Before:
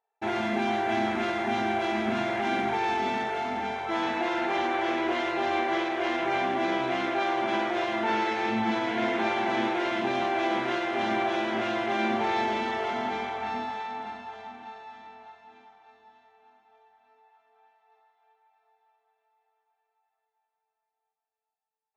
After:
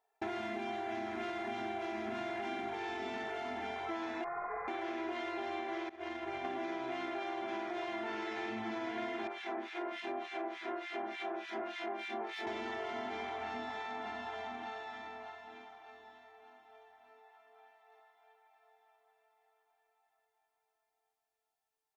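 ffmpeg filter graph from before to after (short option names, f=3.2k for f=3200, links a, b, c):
-filter_complex "[0:a]asettb=1/sr,asplit=3[a][b][c];[a]atrim=end=4.244[d];[b]atrim=start=4.24:end=4.68,asetpts=PTS-STARTPTS,afade=t=in:d=0.004:c=qsin,afade=t=out:st=0.436:d=0.004:c=qsin,highpass=f=1.9k:t=q:w=2.7,lowpass=f=2.4k:t=q:w=0.5098,lowpass=f=2.4k:t=q:w=0.6013,lowpass=f=2.4k:t=q:w=0.9,lowpass=f=2.4k:t=q:w=2.563,afreqshift=-2800[e];[c]atrim=start=4.676[f];[d][e]acrossfade=d=0.004:c1=hsin:c2=qsin[g];[g][f]acrossfade=d=0.004:c1=qsin:c2=hsin,asettb=1/sr,asplit=3[h][i][j];[h]atrim=end=5.894[k];[i]atrim=start=5.89:end=6.45,asetpts=PTS-STARTPTS,afade=t=in:d=0.004:c=qsin,afade=t=out:st=0.556:d=0.004:c=qsin,equalizer=f=77:t=o:w=1.2:g=9.5,agate=range=-33dB:threshold=-20dB:ratio=3:release=100:detection=peak[l];[j]atrim=start=6.446[m];[k][l]acrossfade=d=0.004:c1=hsin:c2=qsin[n];[n][m]acrossfade=d=0.004:c1=qsin:c2=hsin,asettb=1/sr,asplit=3[o][p][q];[o]atrim=end=9.274[r];[p]atrim=start=9.27:end=12.47,asetpts=PTS-STARTPTS,afade=t=in:d=0.004:c=qsin,afade=t=out:st=3.196:d=0.004:c=qsin,highpass=280,adynamicsmooth=sensitivity=5:basefreq=6.9k,acrossover=split=1700[s][t];[s]aeval=exprs='val(0)*(1-1/2+1/2*cos(2*PI*3.4*n/s))':c=same[u];[t]aeval=exprs='val(0)*(1-1/2-1/2*cos(2*PI*3.4*n/s))':c=same[v];[u][v]amix=inputs=2:normalize=0[w];[q]atrim=start=12.466[x];[r][w]acrossfade=d=0.004:c1=hsin:c2=qsin[y];[y][x]acrossfade=d=0.004:c1=qsin:c2=hsin,aecho=1:1:2.9:0.53,acompressor=threshold=-40dB:ratio=6,volume=2dB"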